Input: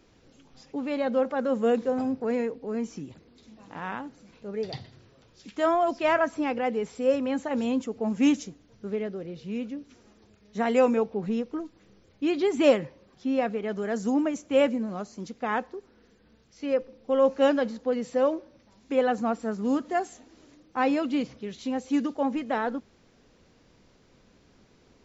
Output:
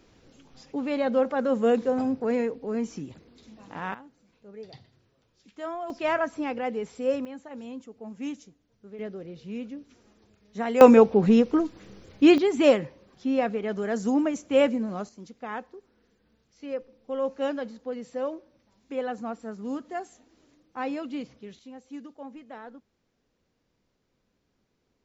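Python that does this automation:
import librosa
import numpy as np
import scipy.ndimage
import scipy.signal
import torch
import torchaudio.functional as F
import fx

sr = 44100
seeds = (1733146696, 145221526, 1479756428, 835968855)

y = fx.gain(x, sr, db=fx.steps((0.0, 1.5), (3.94, -11.0), (5.9, -2.5), (7.25, -12.5), (8.99, -3.0), (10.81, 10.0), (12.38, 1.0), (15.09, -7.0), (21.59, -15.0)))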